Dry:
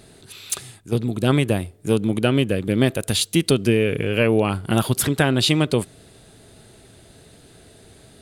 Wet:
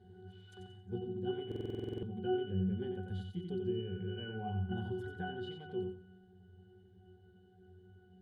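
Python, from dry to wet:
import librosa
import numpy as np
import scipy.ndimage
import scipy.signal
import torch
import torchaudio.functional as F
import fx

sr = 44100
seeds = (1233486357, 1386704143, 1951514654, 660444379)

p1 = fx.law_mismatch(x, sr, coded='mu')
p2 = fx.rider(p1, sr, range_db=4, speed_s=0.5)
p3 = fx.octave_resonator(p2, sr, note='F#', decay_s=0.65)
p4 = p3 + fx.echo_feedback(p3, sr, ms=90, feedback_pct=32, wet_db=-5.5, dry=0)
p5 = fx.buffer_glitch(p4, sr, at_s=(1.47,), block=2048, repeats=11)
y = p5 * 10.0 ** (1.0 / 20.0)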